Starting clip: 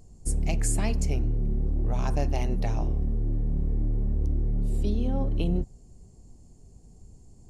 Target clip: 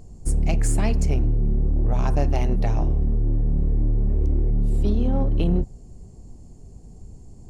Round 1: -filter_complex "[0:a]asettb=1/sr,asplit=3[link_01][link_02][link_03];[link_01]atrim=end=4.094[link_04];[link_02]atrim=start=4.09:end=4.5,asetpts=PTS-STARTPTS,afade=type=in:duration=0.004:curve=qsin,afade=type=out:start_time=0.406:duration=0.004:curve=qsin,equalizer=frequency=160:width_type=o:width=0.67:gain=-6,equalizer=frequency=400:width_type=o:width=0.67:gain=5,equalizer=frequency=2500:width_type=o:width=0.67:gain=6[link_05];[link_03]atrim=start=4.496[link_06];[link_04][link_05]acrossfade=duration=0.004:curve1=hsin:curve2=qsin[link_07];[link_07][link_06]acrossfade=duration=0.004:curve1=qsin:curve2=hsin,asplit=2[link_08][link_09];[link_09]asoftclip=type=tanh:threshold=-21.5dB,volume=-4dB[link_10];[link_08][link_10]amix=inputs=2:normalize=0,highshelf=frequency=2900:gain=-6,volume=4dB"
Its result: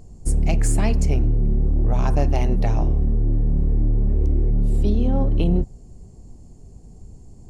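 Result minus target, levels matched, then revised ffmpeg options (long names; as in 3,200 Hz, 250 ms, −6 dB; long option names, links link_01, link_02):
soft clipping: distortion −9 dB
-filter_complex "[0:a]asettb=1/sr,asplit=3[link_01][link_02][link_03];[link_01]atrim=end=4.094[link_04];[link_02]atrim=start=4.09:end=4.5,asetpts=PTS-STARTPTS,afade=type=in:duration=0.004:curve=qsin,afade=type=out:start_time=0.406:duration=0.004:curve=qsin,equalizer=frequency=160:width_type=o:width=0.67:gain=-6,equalizer=frequency=400:width_type=o:width=0.67:gain=5,equalizer=frequency=2500:width_type=o:width=0.67:gain=6[link_05];[link_03]atrim=start=4.496[link_06];[link_04][link_05]acrossfade=duration=0.004:curve1=hsin:curve2=qsin[link_07];[link_07][link_06]acrossfade=duration=0.004:curve1=qsin:curve2=hsin,asplit=2[link_08][link_09];[link_09]asoftclip=type=tanh:threshold=-32.5dB,volume=-4dB[link_10];[link_08][link_10]amix=inputs=2:normalize=0,highshelf=frequency=2900:gain=-6,volume=4dB"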